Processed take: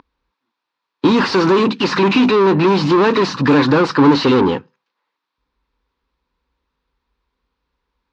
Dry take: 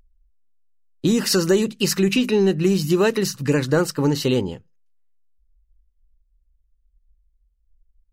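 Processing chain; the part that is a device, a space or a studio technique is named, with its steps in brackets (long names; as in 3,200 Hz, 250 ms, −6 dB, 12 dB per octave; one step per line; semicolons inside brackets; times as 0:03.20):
overdrive pedal into a guitar cabinet (mid-hump overdrive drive 32 dB, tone 6,400 Hz, clips at −7 dBFS; loudspeaker in its box 99–3,900 Hz, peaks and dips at 280 Hz +7 dB, 640 Hz −7 dB, 1,000 Hz +9 dB, 2,000 Hz −5 dB, 3,000 Hz −7 dB)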